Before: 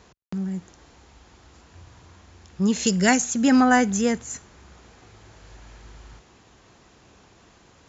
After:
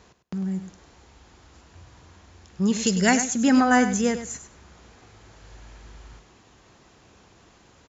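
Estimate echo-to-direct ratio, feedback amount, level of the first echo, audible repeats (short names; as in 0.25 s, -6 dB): -11.0 dB, 15%, -11.0 dB, 2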